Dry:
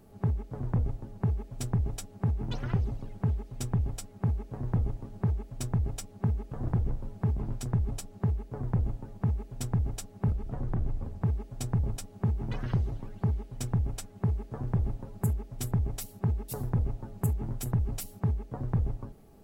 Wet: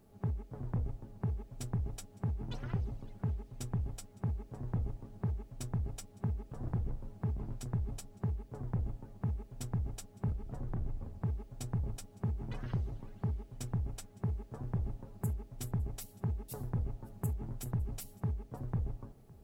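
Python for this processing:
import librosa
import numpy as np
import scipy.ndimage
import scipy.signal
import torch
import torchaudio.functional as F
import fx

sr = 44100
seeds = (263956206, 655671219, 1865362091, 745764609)

p1 = fx.quant_dither(x, sr, seeds[0], bits=12, dither='none')
p2 = p1 + fx.echo_single(p1, sr, ms=560, db=-23.0, dry=0)
y = p2 * 10.0 ** (-7.0 / 20.0)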